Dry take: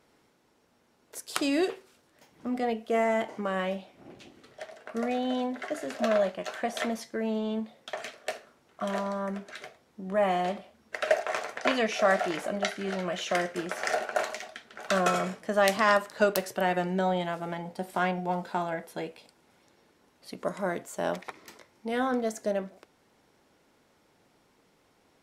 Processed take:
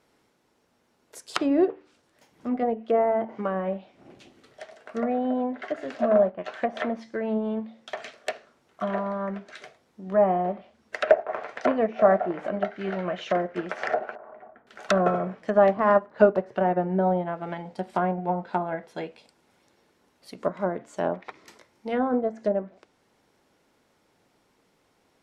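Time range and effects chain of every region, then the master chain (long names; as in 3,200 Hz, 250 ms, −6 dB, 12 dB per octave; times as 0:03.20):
0:14.15–0:14.67: low-pass filter 1,200 Hz 24 dB per octave + downward compressor 8 to 1, threshold −39 dBFS
whole clip: hum removal 74.92 Hz, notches 4; treble cut that deepens with the level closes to 900 Hz, closed at −25 dBFS; expander for the loud parts 1.5 to 1, over −39 dBFS; level +8.5 dB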